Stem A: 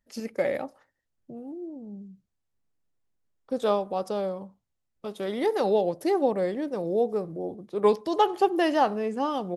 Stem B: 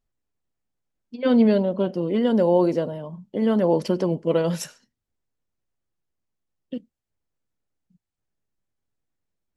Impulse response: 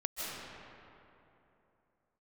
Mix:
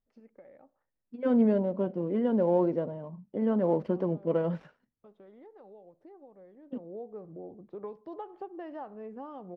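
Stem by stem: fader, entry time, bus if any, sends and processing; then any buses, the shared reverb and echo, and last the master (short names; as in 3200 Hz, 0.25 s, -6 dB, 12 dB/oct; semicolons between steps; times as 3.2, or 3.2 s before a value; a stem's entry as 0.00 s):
6.62 s -17.5 dB -> 6.97 s -6 dB, 0.00 s, no send, compressor 4:1, threshold -34 dBFS, peak gain reduction 15.5 dB
-6.5 dB, 0.00 s, no send, switching dead time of 0.075 ms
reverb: off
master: LPF 1500 Hz 12 dB/oct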